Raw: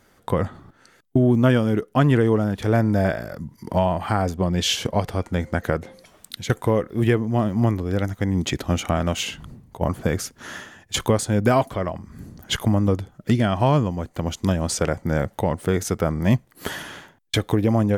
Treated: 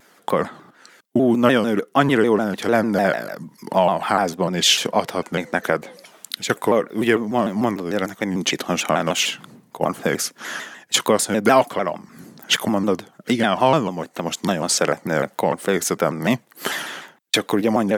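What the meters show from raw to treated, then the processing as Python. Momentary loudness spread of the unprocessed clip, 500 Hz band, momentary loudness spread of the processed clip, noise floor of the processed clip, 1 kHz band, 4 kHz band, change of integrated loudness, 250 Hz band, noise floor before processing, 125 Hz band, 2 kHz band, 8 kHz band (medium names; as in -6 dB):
13 LU, +3.5 dB, 10 LU, -56 dBFS, +5.5 dB, +6.5 dB, +2.0 dB, +0.5 dB, -58 dBFS, -8.5 dB, +6.5 dB, +7.0 dB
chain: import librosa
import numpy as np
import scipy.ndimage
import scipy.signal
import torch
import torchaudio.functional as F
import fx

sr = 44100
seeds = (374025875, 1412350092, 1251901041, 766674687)

y = scipy.signal.sosfilt(scipy.signal.butter(4, 170.0, 'highpass', fs=sr, output='sos'), x)
y = fx.low_shelf(y, sr, hz=470.0, db=-7.5)
y = fx.vibrato_shape(y, sr, shape='saw_down', rate_hz=6.7, depth_cents=160.0)
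y = y * 10.0 ** (7.0 / 20.0)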